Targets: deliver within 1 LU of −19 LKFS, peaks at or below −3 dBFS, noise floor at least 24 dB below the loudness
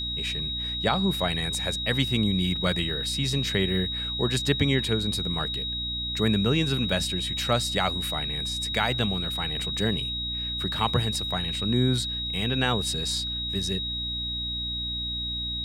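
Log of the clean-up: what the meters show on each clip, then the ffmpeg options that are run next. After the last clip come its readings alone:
mains hum 60 Hz; hum harmonics up to 300 Hz; level of the hum −35 dBFS; interfering tone 3,800 Hz; level of the tone −29 dBFS; integrated loudness −26.0 LKFS; sample peak −8.5 dBFS; target loudness −19.0 LKFS
→ -af "bandreject=frequency=60:width_type=h:width=4,bandreject=frequency=120:width_type=h:width=4,bandreject=frequency=180:width_type=h:width=4,bandreject=frequency=240:width_type=h:width=4,bandreject=frequency=300:width_type=h:width=4"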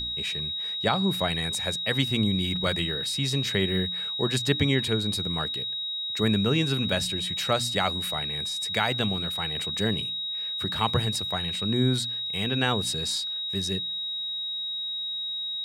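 mains hum none found; interfering tone 3,800 Hz; level of the tone −29 dBFS
→ -af "bandreject=frequency=3800:width=30"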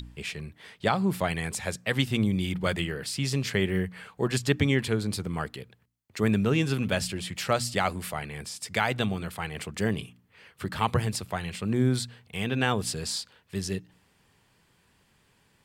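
interfering tone none found; integrated loudness −29.0 LKFS; sample peak −9.5 dBFS; target loudness −19.0 LKFS
→ -af "volume=10dB,alimiter=limit=-3dB:level=0:latency=1"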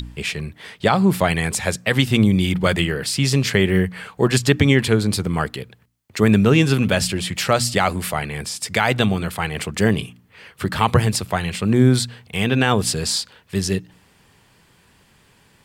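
integrated loudness −19.5 LKFS; sample peak −3.0 dBFS; background noise floor −56 dBFS

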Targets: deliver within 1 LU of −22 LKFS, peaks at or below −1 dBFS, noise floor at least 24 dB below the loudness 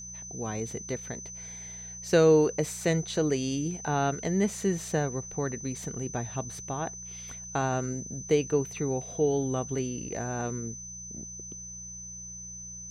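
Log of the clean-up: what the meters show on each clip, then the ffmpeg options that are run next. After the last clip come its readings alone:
mains hum 60 Hz; hum harmonics up to 180 Hz; level of the hum −47 dBFS; interfering tone 6,100 Hz; level of the tone −40 dBFS; integrated loudness −30.5 LKFS; sample peak −10.0 dBFS; target loudness −22.0 LKFS
→ -af "bandreject=frequency=60:width_type=h:width=4,bandreject=frequency=120:width_type=h:width=4,bandreject=frequency=180:width_type=h:width=4"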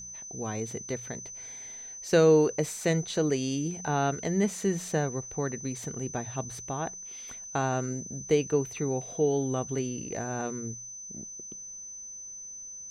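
mains hum none found; interfering tone 6,100 Hz; level of the tone −40 dBFS
→ -af "bandreject=frequency=6100:width=30"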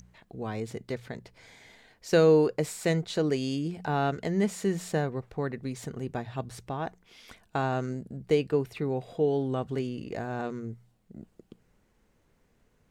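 interfering tone none found; integrated loudness −29.5 LKFS; sample peak −10.0 dBFS; target loudness −22.0 LKFS
→ -af "volume=7.5dB"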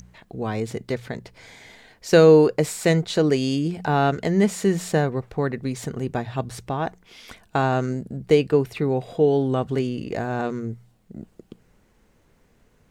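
integrated loudness −22.0 LKFS; sample peak −2.5 dBFS; background noise floor −61 dBFS

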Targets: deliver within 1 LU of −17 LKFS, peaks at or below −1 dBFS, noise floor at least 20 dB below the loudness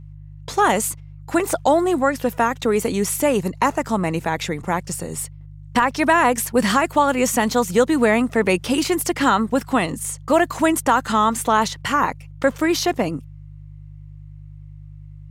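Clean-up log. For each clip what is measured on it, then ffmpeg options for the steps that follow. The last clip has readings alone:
mains hum 50 Hz; hum harmonics up to 150 Hz; level of the hum −37 dBFS; integrated loudness −20.0 LKFS; sample peak −5.0 dBFS; target loudness −17.0 LKFS
→ -af "bandreject=frequency=50:width_type=h:width=4,bandreject=frequency=100:width_type=h:width=4,bandreject=frequency=150:width_type=h:width=4"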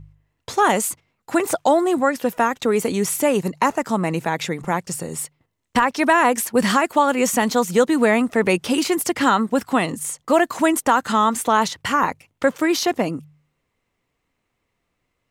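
mains hum none found; integrated loudness −20.0 LKFS; sample peak −5.0 dBFS; target loudness −17.0 LKFS
→ -af "volume=3dB"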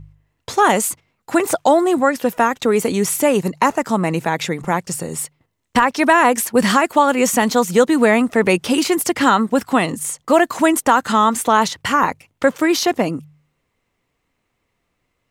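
integrated loudness −17.0 LKFS; sample peak −2.0 dBFS; background noise floor −72 dBFS

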